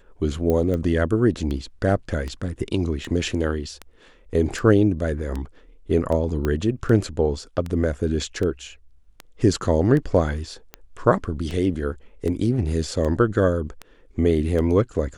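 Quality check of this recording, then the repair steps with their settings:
scratch tick 78 rpm −17 dBFS
0:00.50: click −12 dBFS
0:06.45: click −12 dBFS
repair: click removal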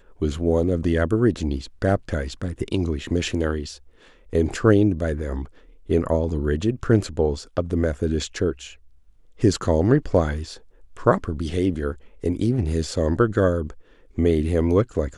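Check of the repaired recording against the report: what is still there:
0:06.45: click

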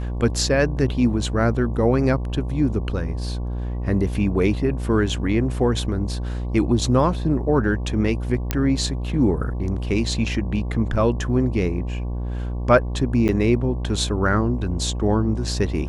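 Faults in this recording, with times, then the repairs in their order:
mains buzz 60 Hz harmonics 19 −26 dBFS
0:08.51: click −6 dBFS
0:13.28–0:13.29: drop-out 9 ms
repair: click removal
hum removal 60 Hz, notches 19
repair the gap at 0:13.28, 9 ms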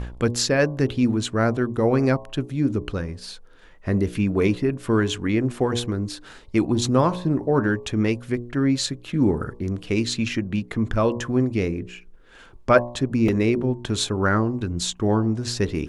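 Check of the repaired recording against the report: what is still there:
0:08.51: click

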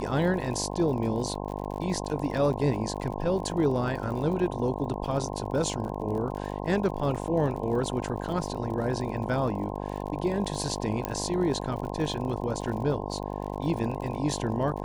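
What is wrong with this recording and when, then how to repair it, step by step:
mains buzz 50 Hz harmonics 21 −34 dBFS
surface crackle 49 per second −36 dBFS
0:11.05: click −13 dBFS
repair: click removal
hum removal 50 Hz, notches 21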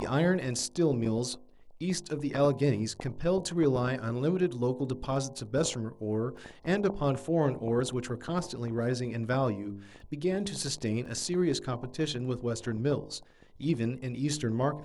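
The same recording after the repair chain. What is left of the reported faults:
0:11.05: click

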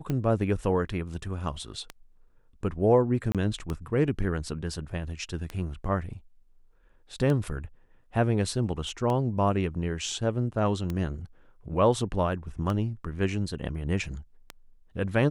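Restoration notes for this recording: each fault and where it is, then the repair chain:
scratch tick 33 1/3 rpm −18 dBFS
0:03.32–0:03.35: drop-out 27 ms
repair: click removal
repair the gap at 0:03.32, 27 ms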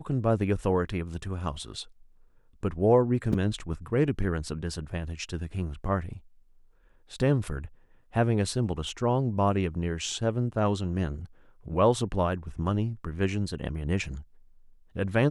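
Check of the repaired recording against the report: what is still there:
none of them is left

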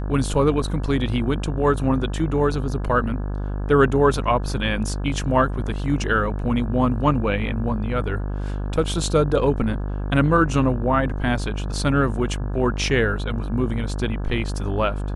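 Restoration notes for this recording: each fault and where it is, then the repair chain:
mains buzz 50 Hz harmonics 34 −26 dBFS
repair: hum removal 50 Hz, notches 34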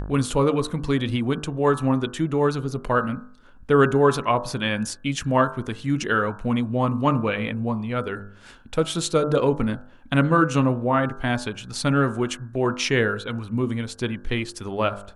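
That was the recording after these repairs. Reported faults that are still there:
none of them is left

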